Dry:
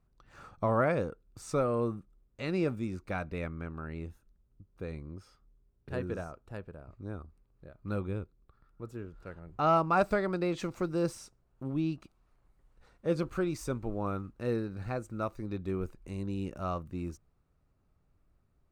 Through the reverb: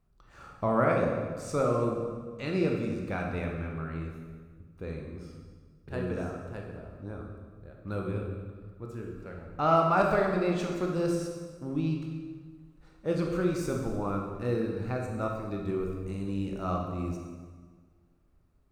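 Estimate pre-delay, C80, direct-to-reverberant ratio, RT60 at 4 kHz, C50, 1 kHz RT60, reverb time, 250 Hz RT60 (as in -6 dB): 16 ms, 4.5 dB, 0.0 dB, 1.3 s, 2.5 dB, 1.5 s, 1.6 s, 1.8 s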